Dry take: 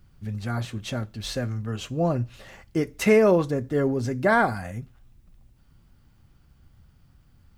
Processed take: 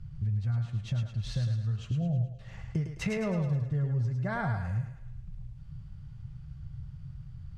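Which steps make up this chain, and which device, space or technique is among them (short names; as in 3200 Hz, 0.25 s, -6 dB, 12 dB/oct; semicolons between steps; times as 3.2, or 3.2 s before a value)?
jukebox (LPF 6600 Hz 12 dB/oct; resonant low shelf 200 Hz +12.5 dB, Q 3; compressor 4:1, threshold -29 dBFS, peak gain reduction 19.5 dB); 1.91–2.39 Chebyshev low-pass 810 Hz, order 10; thinning echo 0.106 s, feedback 48%, high-pass 320 Hz, level -5 dB; gain -2 dB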